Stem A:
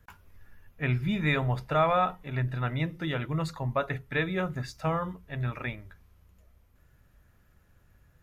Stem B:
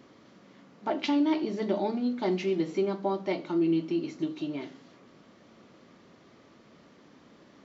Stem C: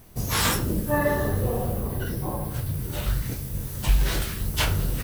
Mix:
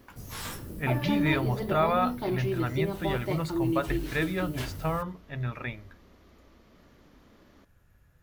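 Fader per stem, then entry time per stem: -1.0 dB, -3.0 dB, -15.0 dB; 0.00 s, 0.00 s, 0.00 s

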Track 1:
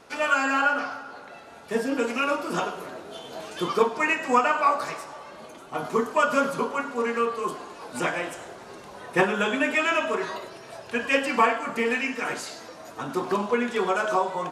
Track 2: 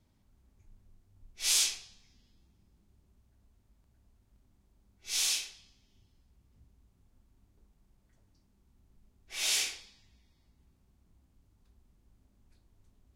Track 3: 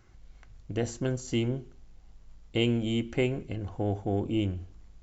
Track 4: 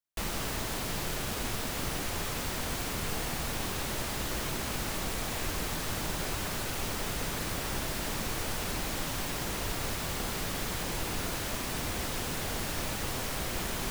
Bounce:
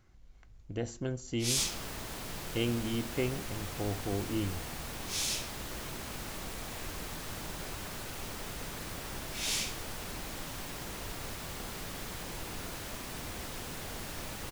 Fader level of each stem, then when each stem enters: mute, -4.0 dB, -5.5 dB, -7.0 dB; mute, 0.00 s, 0.00 s, 1.40 s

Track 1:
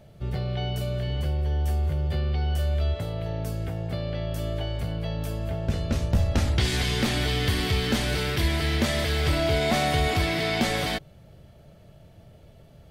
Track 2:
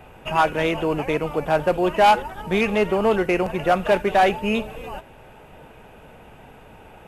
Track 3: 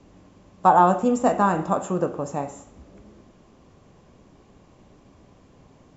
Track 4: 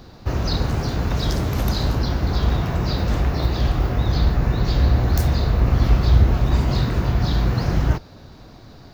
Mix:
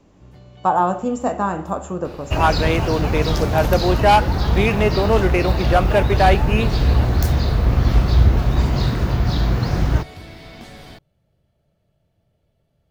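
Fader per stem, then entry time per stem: -16.0 dB, +1.5 dB, -1.5 dB, +1.0 dB; 0.00 s, 2.05 s, 0.00 s, 2.05 s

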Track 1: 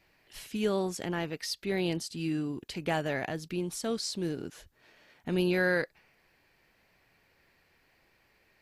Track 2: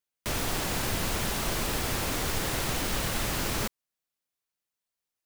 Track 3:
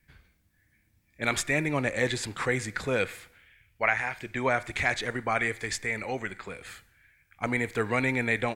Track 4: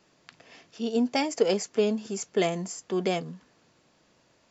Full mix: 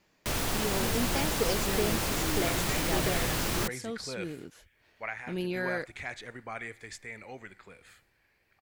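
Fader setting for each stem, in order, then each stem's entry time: -5.5 dB, -0.5 dB, -12.0 dB, -7.5 dB; 0.00 s, 0.00 s, 1.20 s, 0.00 s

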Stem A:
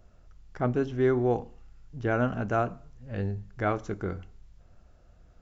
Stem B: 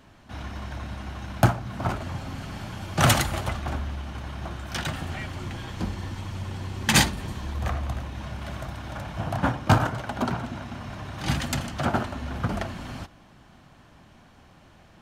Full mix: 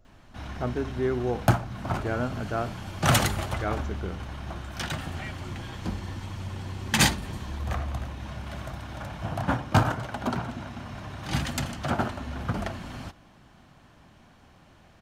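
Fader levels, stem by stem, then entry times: -3.0 dB, -2.0 dB; 0.00 s, 0.05 s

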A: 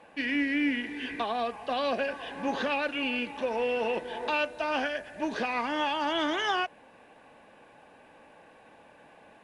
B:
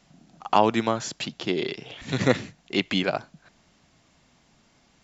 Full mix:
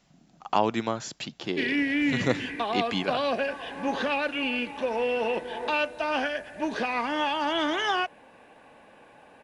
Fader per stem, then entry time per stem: +2.0 dB, -4.5 dB; 1.40 s, 0.00 s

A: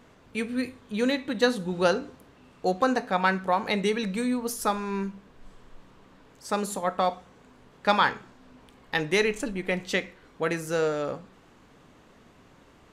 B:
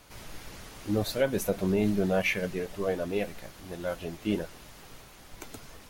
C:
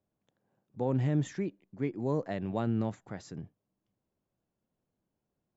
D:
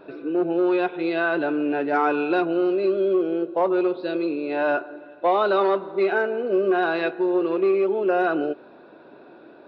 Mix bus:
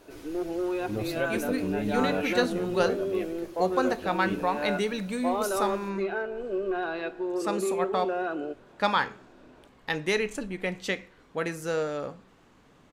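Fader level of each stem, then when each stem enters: -3.0 dB, -5.0 dB, -14.5 dB, -9.0 dB; 0.95 s, 0.00 s, 0.00 s, 0.00 s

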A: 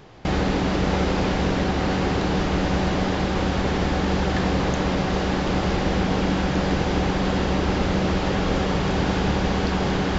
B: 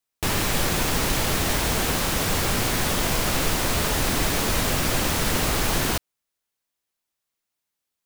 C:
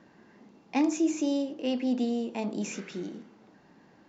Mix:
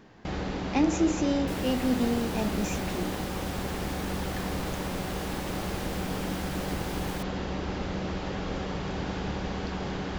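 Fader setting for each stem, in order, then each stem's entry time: -10.5 dB, -17.5 dB, +1.0 dB; 0.00 s, 1.25 s, 0.00 s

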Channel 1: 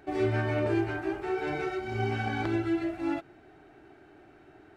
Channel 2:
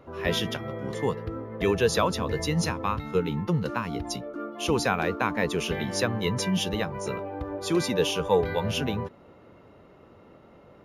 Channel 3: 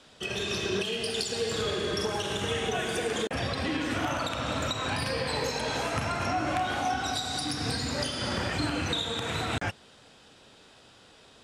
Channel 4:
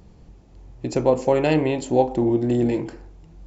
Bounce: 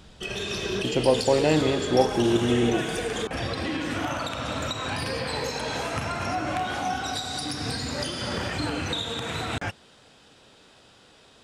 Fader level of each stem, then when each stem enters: -13.0 dB, -17.0 dB, +0.5 dB, -2.5 dB; 0.90 s, 0.35 s, 0.00 s, 0.00 s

